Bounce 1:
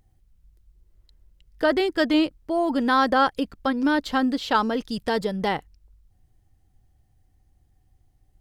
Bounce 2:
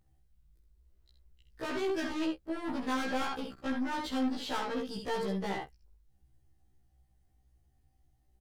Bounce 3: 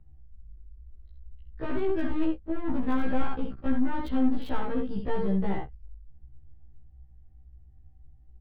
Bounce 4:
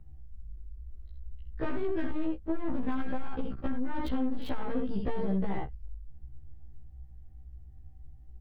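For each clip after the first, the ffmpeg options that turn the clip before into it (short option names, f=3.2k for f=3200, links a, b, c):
-af "aecho=1:1:65|78:0.447|0.188,aeval=exprs='(tanh(17.8*val(0)+0.3)-tanh(0.3))/17.8':c=same,afftfilt=real='re*1.73*eq(mod(b,3),0)':imag='im*1.73*eq(mod(b,3),0)':win_size=2048:overlap=0.75,volume=-3.5dB"
-filter_complex "[0:a]aemphasis=mode=reproduction:type=riaa,acrossover=split=160|960|4100[a][b][c][d];[d]acrusher=bits=7:mix=0:aa=0.000001[e];[a][b][c][e]amix=inputs=4:normalize=0"
-af "acompressor=threshold=-25dB:ratio=6,asoftclip=type=tanh:threshold=-25.5dB,volume=4dB"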